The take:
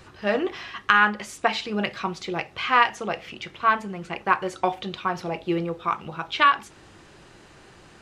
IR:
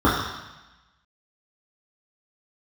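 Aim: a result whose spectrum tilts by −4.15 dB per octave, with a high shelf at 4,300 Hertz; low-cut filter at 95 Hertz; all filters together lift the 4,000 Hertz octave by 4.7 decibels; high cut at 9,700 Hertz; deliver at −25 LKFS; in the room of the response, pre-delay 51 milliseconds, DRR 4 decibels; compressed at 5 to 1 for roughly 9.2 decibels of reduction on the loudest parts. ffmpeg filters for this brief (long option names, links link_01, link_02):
-filter_complex "[0:a]highpass=95,lowpass=9700,equalizer=frequency=4000:width_type=o:gain=4.5,highshelf=frequency=4300:gain=4.5,acompressor=threshold=-22dB:ratio=5,asplit=2[link_01][link_02];[1:a]atrim=start_sample=2205,adelay=51[link_03];[link_02][link_03]afir=irnorm=-1:irlink=0,volume=-26dB[link_04];[link_01][link_04]amix=inputs=2:normalize=0,volume=1.5dB"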